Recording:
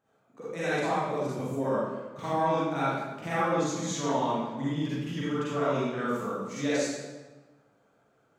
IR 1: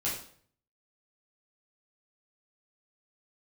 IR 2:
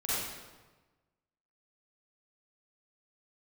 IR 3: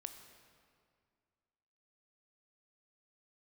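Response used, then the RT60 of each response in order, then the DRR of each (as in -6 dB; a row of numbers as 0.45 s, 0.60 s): 2; 0.55 s, 1.3 s, 2.1 s; -8.0 dB, -10.5 dB, 7.0 dB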